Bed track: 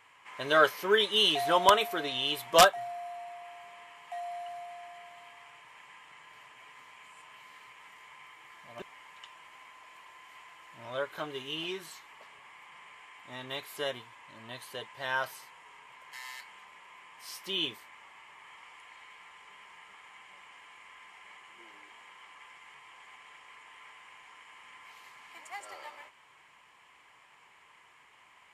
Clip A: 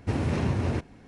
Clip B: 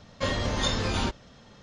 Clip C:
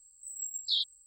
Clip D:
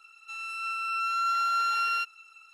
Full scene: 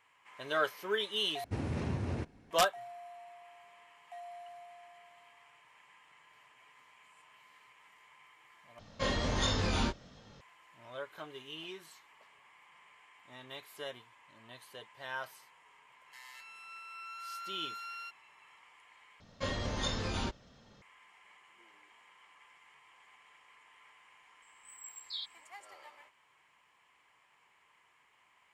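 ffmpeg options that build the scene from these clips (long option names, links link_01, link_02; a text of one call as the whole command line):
ffmpeg -i bed.wav -i cue0.wav -i cue1.wav -i cue2.wav -i cue3.wav -filter_complex "[2:a]asplit=2[link_01][link_02];[0:a]volume=-8.5dB[link_03];[link_01]flanger=delay=19.5:depth=6.6:speed=1.4[link_04];[4:a]equalizer=frequency=600:width=0.4:gain=-4.5[link_05];[link_03]asplit=4[link_06][link_07][link_08][link_09];[link_06]atrim=end=1.444[link_10];[1:a]atrim=end=1.07,asetpts=PTS-STARTPTS,volume=-9dB[link_11];[link_07]atrim=start=2.506:end=8.794[link_12];[link_04]atrim=end=1.62,asetpts=PTS-STARTPTS,volume=-1dB[link_13];[link_08]atrim=start=10.406:end=19.204[link_14];[link_02]atrim=end=1.62,asetpts=PTS-STARTPTS,volume=-8dB[link_15];[link_09]atrim=start=20.816[link_16];[link_05]atrim=end=2.53,asetpts=PTS-STARTPTS,volume=-14.5dB,afade=type=in:duration=0.004:curve=hsin,afade=type=out:start_time=2.526:duration=0.004:curve=hsin,adelay=16060[link_17];[3:a]atrim=end=1.06,asetpts=PTS-STARTPTS,volume=-11.5dB,afade=type=in:duration=0.004:curve=hsin,afade=type=out:start_time=1.056:duration=0.004:curve=hsin,adelay=24420[link_18];[link_10][link_11]acrossfade=duration=0.004:curve1=hsin:curve2=hsin[link_19];[link_19][link_12]acrossfade=duration=0.004:curve1=hsin:curve2=hsin[link_20];[link_20][link_13]acrossfade=duration=0.004:curve1=hsin:curve2=hsin[link_21];[link_21][link_14]acrossfade=duration=0.004:curve1=hsin:curve2=hsin[link_22];[link_22][link_15]acrossfade=duration=0.004:curve1=hsin:curve2=hsin[link_23];[link_23][link_16]acrossfade=duration=0.004:curve1=hsin:curve2=hsin[link_24];[link_24][link_17][link_18]amix=inputs=3:normalize=0" out.wav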